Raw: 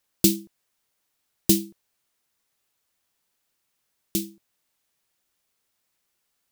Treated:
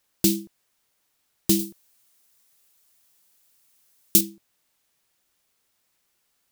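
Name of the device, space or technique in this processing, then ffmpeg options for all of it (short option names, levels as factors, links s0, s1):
soft clipper into limiter: -filter_complex "[0:a]asoftclip=type=tanh:threshold=0.562,alimiter=limit=0.266:level=0:latency=1:release=120,asettb=1/sr,asplit=3[s0][s1][s2];[s0]atrim=end=1.594[s3];[s1]atrim=start=1.59:end=4.21,asetpts=PTS-STARTPTS,afade=t=in:d=0.004:c=qsin,afade=t=out:st=2.616:d=0.004:c=qsin,highshelf=f=4900:g=10.5[s4];[s2]atrim=start=4.206[s5];[s3][s4]acrossfade=d=0.004:c1=hsin:c2=qsin[s6];[s6][s5]acrossfade=d=0.004:c1=qsin:c2=hsin,volume=1.58"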